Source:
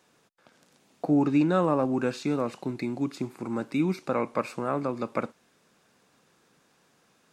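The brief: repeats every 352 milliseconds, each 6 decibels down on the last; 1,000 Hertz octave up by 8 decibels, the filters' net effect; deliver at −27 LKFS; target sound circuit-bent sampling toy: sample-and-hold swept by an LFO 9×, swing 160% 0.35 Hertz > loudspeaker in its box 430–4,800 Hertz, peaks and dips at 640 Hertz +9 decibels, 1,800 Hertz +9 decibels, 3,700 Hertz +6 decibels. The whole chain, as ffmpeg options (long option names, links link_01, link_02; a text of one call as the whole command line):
ffmpeg -i in.wav -af "equalizer=frequency=1000:width_type=o:gain=8,aecho=1:1:352|704|1056|1408|1760|2112:0.501|0.251|0.125|0.0626|0.0313|0.0157,acrusher=samples=9:mix=1:aa=0.000001:lfo=1:lforange=14.4:lforate=0.35,highpass=430,equalizer=frequency=640:width_type=q:width=4:gain=9,equalizer=frequency=1800:width_type=q:width=4:gain=9,equalizer=frequency=3700:width_type=q:width=4:gain=6,lowpass=frequency=4800:width=0.5412,lowpass=frequency=4800:width=1.3066,volume=-1.5dB" out.wav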